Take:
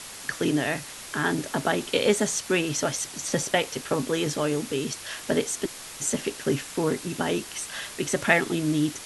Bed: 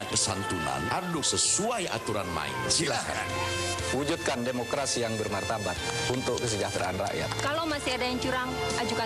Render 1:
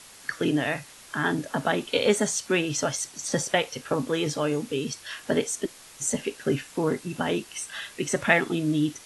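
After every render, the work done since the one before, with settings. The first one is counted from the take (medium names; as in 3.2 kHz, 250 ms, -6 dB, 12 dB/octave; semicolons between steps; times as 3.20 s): noise print and reduce 8 dB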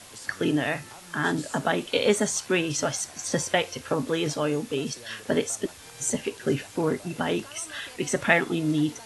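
add bed -18 dB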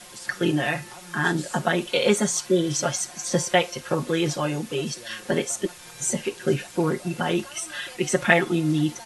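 2.51–2.80 s: spectral replace 710–3000 Hz before; comb 5.6 ms, depth 87%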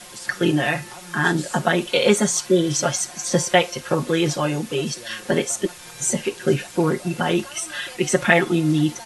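trim +3.5 dB; peak limiter -1 dBFS, peak gain reduction 2.5 dB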